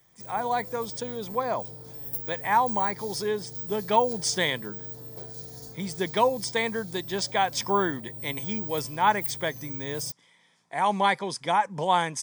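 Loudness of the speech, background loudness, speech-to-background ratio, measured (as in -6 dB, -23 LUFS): -27.5 LUFS, -36.0 LUFS, 8.5 dB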